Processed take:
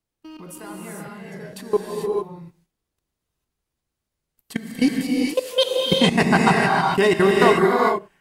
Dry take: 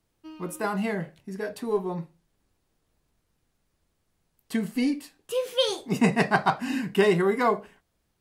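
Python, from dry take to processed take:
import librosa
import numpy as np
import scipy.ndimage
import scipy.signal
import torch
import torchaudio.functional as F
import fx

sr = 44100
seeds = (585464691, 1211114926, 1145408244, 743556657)

y = fx.high_shelf(x, sr, hz=2300.0, db=3.0)
y = fx.level_steps(y, sr, step_db=23)
y = fx.rev_gated(y, sr, seeds[0], gate_ms=470, shape='rising', drr_db=-1.5)
y = y * 10.0 ** (7.5 / 20.0)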